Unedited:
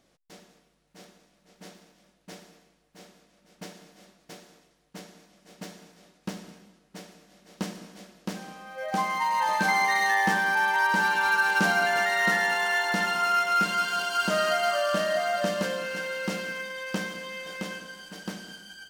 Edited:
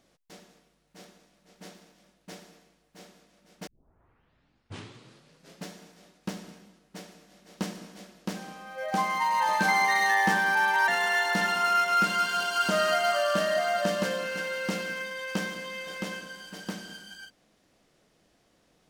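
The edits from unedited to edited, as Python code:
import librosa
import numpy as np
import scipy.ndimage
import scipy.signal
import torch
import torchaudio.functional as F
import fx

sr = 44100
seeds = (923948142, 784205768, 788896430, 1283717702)

y = fx.edit(x, sr, fx.tape_start(start_s=3.67, length_s=2.02),
    fx.cut(start_s=10.88, length_s=1.59), tone=tone)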